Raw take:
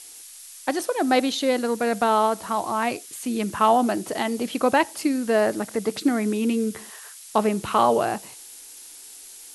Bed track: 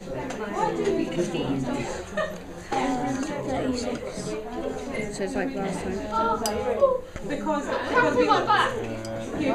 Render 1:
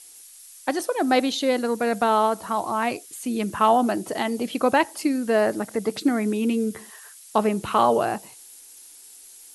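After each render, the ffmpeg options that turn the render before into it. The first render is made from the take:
ffmpeg -i in.wav -af "afftdn=noise_reduction=6:noise_floor=-44" out.wav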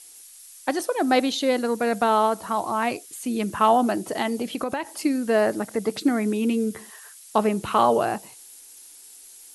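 ffmpeg -i in.wav -filter_complex "[0:a]asettb=1/sr,asplit=3[link_01][link_02][link_03];[link_01]atrim=end=4.414[link_04];[link_02]atrim=start=4.41:end=4.9,asetpts=PTS-STARTPTS,afade=type=in:duration=0.004:curve=qsin,afade=type=out:start_time=0.486:duration=0.004:curve=qsin,acompressor=threshold=-22dB:ratio=12:attack=3.2:release=140:knee=1:detection=peak[link_05];[link_03]atrim=start=4.896[link_06];[link_04][link_05]acrossfade=duration=0.004:curve1=hsin:curve2=qsin[link_07];[link_07][link_06]acrossfade=duration=0.004:curve1=qsin:curve2=hsin" out.wav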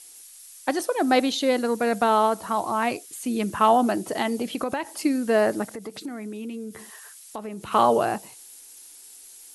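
ffmpeg -i in.wav -filter_complex "[0:a]asplit=3[link_01][link_02][link_03];[link_01]afade=type=out:start_time=5.69:duration=0.02[link_04];[link_02]acompressor=threshold=-35dB:ratio=3:attack=3.2:release=140:knee=1:detection=peak,afade=type=in:start_time=5.69:duration=0.02,afade=type=out:start_time=7.71:duration=0.02[link_05];[link_03]afade=type=in:start_time=7.71:duration=0.02[link_06];[link_04][link_05][link_06]amix=inputs=3:normalize=0" out.wav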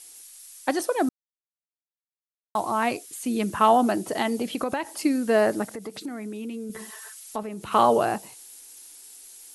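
ffmpeg -i in.wav -filter_complex "[0:a]asettb=1/sr,asplit=3[link_01][link_02][link_03];[link_01]atrim=end=6.694[link_04];[link_02]atrim=start=6.69:end=7.43,asetpts=PTS-STARTPTS,afade=type=in:duration=0.004:curve=qsin,afade=type=out:start_time=0.736:duration=0.004:curve=qsin,aecho=1:1:4.6:0.88,atrim=end_sample=32634[link_05];[link_03]atrim=start=7.426[link_06];[link_04][link_05]acrossfade=duration=0.004:curve1=hsin:curve2=qsin[link_07];[link_07][link_06]acrossfade=duration=0.004:curve1=qsin:curve2=hsin,asplit=3[link_08][link_09][link_10];[link_08]atrim=end=1.09,asetpts=PTS-STARTPTS,afade=type=out:start_time=1.086:duration=0.004:curve=hsin[link_11];[link_09]atrim=start=1.09:end=2.55,asetpts=PTS-STARTPTS,volume=0[link_12];[link_10]atrim=start=2.55,asetpts=PTS-STARTPTS,afade=type=in:duration=0.004:curve=hsin[link_13];[link_11][link_12][link_13]concat=n=3:v=0:a=1" out.wav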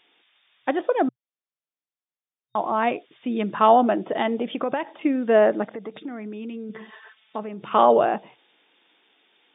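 ffmpeg -i in.wav -af "afftfilt=real='re*between(b*sr/4096,120,3700)':imag='im*between(b*sr/4096,120,3700)':win_size=4096:overlap=0.75,adynamicequalizer=threshold=0.0282:dfrequency=580:dqfactor=1.4:tfrequency=580:tqfactor=1.4:attack=5:release=100:ratio=0.375:range=2.5:mode=boostabove:tftype=bell" out.wav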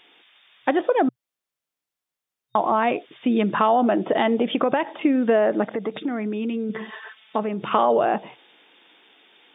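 ffmpeg -i in.wav -filter_complex "[0:a]asplit=2[link_01][link_02];[link_02]alimiter=limit=-14.5dB:level=0:latency=1:release=18,volume=3dB[link_03];[link_01][link_03]amix=inputs=2:normalize=0,acompressor=threshold=-17dB:ratio=3" out.wav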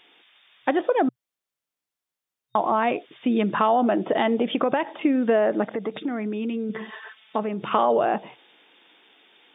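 ffmpeg -i in.wav -af "volume=-1.5dB" out.wav

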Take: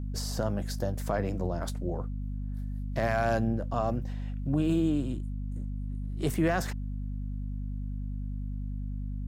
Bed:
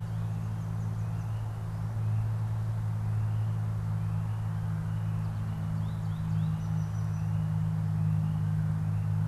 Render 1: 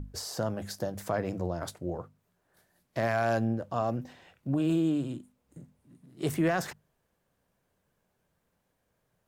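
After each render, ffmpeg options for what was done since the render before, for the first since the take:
ffmpeg -i in.wav -af "bandreject=frequency=50:width_type=h:width=6,bandreject=frequency=100:width_type=h:width=6,bandreject=frequency=150:width_type=h:width=6,bandreject=frequency=200:width_type=h:width=6,bandreject=frequency=250:width_type=h:width=6" out.wav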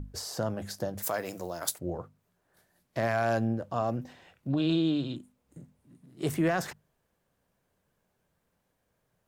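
ffmpeg -i in.wav -filter_complex "[0:a]asplit=3[link_01][link_02][link_03];[link_01]afade=type=out:start_time=1.02:duration=0.02[link_04];[link_02]aemphasis=mode=production:type=riaa,afade=type=in:start_time=1.02:duration=0.02,afade=type=out:start_time=1.78:duration=0.02[link_05];[link_03]afade=type=in:start_time=1.78:duration=0.02[link_06];[link_04][link_05][link_06]amix=inputs=3:normalize=0,asettb=1/sr,asplit=3[link_07][link_08][link_09];[link_07]atrim=end=4.504[link_10];[link_08]atrim=start=4.5:end=5.16,asetpts=PTS-STARTPTS,afade=type=in:duration=0.004:curve=qsin,afade=type=out:start_time=0.656:duration=0.004:curve=qsin,lowpass=frequency=3900:width_type=q:width=6.8[link_11];[link_09]atrim=start=5.156[link_12];[link_10][link_11]acrossfade=duration=0.004:curve1=hsin:curve2=qsin[link_13];[link_13][link_12]acrossfade=duration=0.004:curve1=qsin:curve2=hsin" out.wav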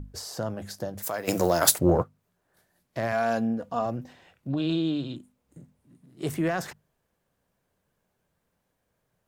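ffmpeg -i in.wav -filter_complex "[0:a]asplit=3[link_01][link_02][link_03];[link_01]afade=type=out:start_time=1.27:duration=0.02[link_04];[link_02]aeval=exprs='0.316*sin(PI/2*3.55*val(0)/0.316)':channel_layout=same,afade=type=in:start_time=1.27:duration=0.02,afade=type=out:start_time=2.02:duration=0.02[link_05];[link_03]afade=type=in:start_time=2.02:duration=0.02[link_06];[link_04][link_05][link_06]amix=inputs=3:normalize=0,asettb=1/sr,asplit=3[link_07][link_08][link_09];[link_07]atrim=end=3.124[link_10];[link_08]atrim=start=3.12:end=3.86,asetpts=PTS-STARTPTS,afade=type=in:duration=0.004:curve=qsin,afade=type=out:start_time=0.736:duration=0.004:curve=qsin,aecho=1:1:4.2:0.65,atrim=end_sample=32634[link_11];[link_09]atrim=start=3.856[link_12];[link_10][link_11]acrossfade=duration=0.004:curve1=hsin:curve2=qsin[link_13];[link_13][link_12]acrossfade=duration=0.004:curve1=qsin:curve2=hsin" out.wav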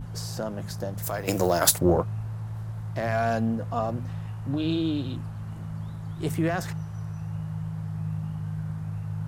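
ffmpeg -i in.wav -i bed.wav -filter_complex "[1:a]volume=-3dB[link_01];[0:a][link_01]amix=inputs=2:normalize=0" out.wav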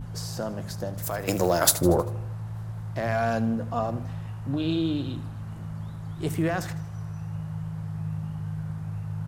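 ffmpeg -i in.wav -af "aecho=1:1:79|158|237|316|395:0.15|0.0793|0.042|0.0223|0.0118" out.wav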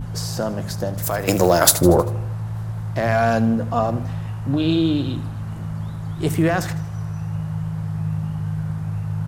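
ffmpeg -i in.wav -af "volume=7.5dB,alimiter=limit=-3dB:level=0:latency=1" out.wav

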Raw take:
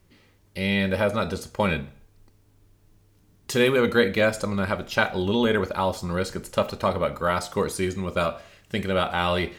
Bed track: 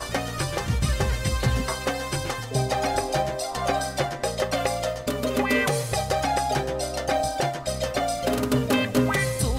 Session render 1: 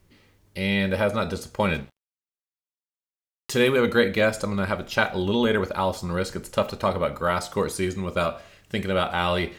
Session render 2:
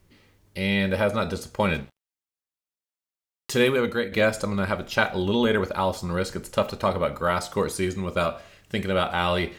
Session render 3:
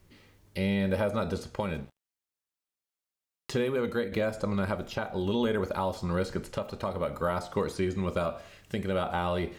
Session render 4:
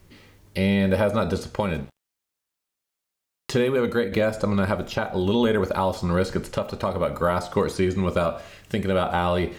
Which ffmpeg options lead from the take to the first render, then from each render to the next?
ffmpeg -i in.wav -filter_complex "[0:a]asettb=1/sr,asplit=3[link_01][link_02][link_03];[link_01]atrim=end=1.744[link_04];[link_02]atrim=start=1.74:end=3.51,asetpts=PTS-STARTPTS,afade=type=in:duration=0.004:curve=qsin,afade=type=out:start_time=1.766:duration=0.004:curve=qsin,aeval=exprs='sgn(val(0))*max(abs(val(0))-0.00668,0)':channel_layout=same[link_05];[link_03]atrim=start=3.506[link_06];[link_04][link_05]acrossfade=duration=0.004:curve1=hsin:curve2=qsin[link_07];[link_07][link_06]acrossfade=duration=0.004:curve1=qsin:curve2=hsin" out.wav
ffmpeg -i in.wav -filter_complex "[0:a]asplit=2[link_01][link_02];[link_01]atrim=end=4.12,asetpts=PTS-STARTPTS,afade=type=out:start_time=3.62:duration=0.5:silence=0.298538[link_03];[link_02]atrim=start=4.12,asetpts=PTS-STARTPTS,afade=type=in:duration=0.004:curve=hsin:silence=0.298538[link_04];[link_03][link_04]concat=n=2:v=0:a=1" out.wav
ffmpeg -i in.wav -filter_complex "[0:a]acrossover=split=1200|5200[link_01][link_02][link_03];[link_01]acompressor=threshold=-24dB:ratio=4[link_04];[link_02]acompressor=threshold=-41dB:ratio=4[link_05];[link_03]acompressor=threshold=-54dB:ratio=4[link_06];[link_04][link_05][link_06]amix=inputs=3:normalize=0,alimiter=limit=-18dB:level=0:latency=1:release=498" out.wav
ffmpeg -i in.wav -af "volume=7dB" out.wav

